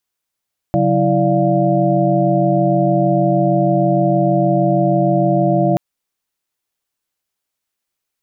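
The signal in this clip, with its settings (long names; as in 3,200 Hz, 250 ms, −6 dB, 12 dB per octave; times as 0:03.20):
held notes C#3/F#3/E4/D5/F5 sine, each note −18 dBFS 5.03 s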